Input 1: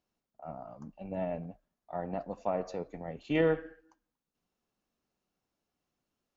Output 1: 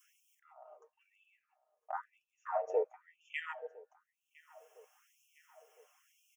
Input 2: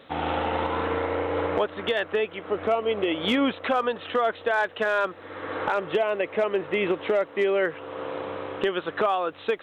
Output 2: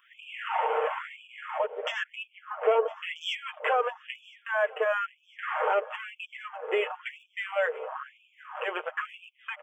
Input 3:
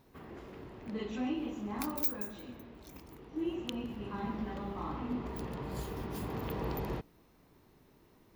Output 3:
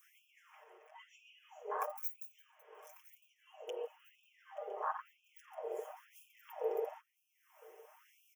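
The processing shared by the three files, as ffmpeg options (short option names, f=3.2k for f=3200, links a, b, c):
-filter_complex "[0:a]afwtdn=0.02,adynamicequalizer=threshold=0.01:dfrequency=1700:dqfactor=0.75:tfrequency=1700:tqfactor=0.75:attack=5:release=100:ratio=0.375:range=3:mode=cutabove:tftype=bell,aecho=1:1:6.5:0.71,asplit=2[a][b];[b]acompressor=threshold=-34dB:ratio=6,volume=-1.5dB[c];[a][c]amix=inputs=2:normalize=0,alimiter=limit=-15.5dB:level=0:latency=1:release=119,acompressor=mode=upward:threshold=-43dB:ratio=2.5,aphaser=in_gain=1:out_gain=1:delay=2.4:decay=0.22:speed=0.37:type=sinusoidal,asuperstop=centerf=4200:order=8:qfactor=2,aecho=1:1:1009|2018|3027|4036:0.0708|0.0382|0.0206|0.0111,afftfilt=real='re*gte(b*sr/1024,360*pow(2400/360,0.5+0.5*sin(2*PI*1*pts/sr)))':imag='im*gte(b*sr/1024,360*pow(2400/360,0.5+0.5*sin(2*PI*1*pts/sr)))':win_size=1024:overlap=0.75"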